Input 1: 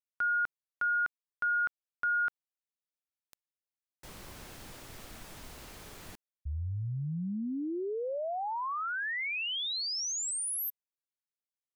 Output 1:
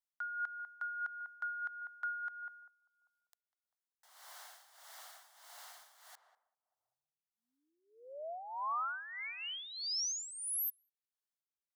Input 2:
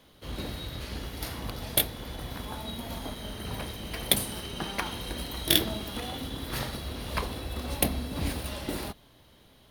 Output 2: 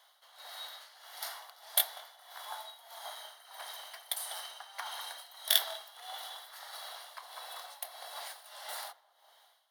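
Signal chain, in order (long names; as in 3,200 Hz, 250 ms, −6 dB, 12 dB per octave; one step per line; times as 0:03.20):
parametric band 2,500 Hz −14 dB 0.27 octaves
feedback echo with a low-pass in the loop 197 ms, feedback 57%, low-pass 930 Hz, level −10 dB
amplitude tremolo 1.6 Hz, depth 78%
elliptic high-pass filter 700 Hz, stop band 70 dB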